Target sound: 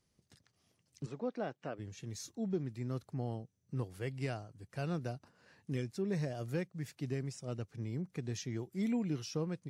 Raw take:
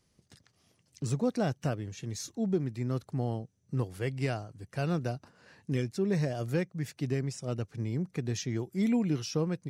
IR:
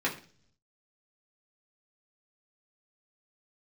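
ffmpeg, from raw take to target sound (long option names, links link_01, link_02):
-filter_complex "[0:a]asplit=3[link_01][link_02][link_03];[link_01]afade=type=out:start_time=1.05:duration=0.02[link_04];[link_02]highpass=280,lowpass=2800,afade=type=in:start_time=1.05:duration=0.02,afade=type=out:start_time=1.78:duration=0.02[link_05];[link_03]afade=type=in:start_time=1.78:duration=0.02[link_06];[link_04][link_05][link_06]amix=inputs=3:normalize=0,volume=-6.5dB" -ar 44100 -c:a wmav2 -b:a 128k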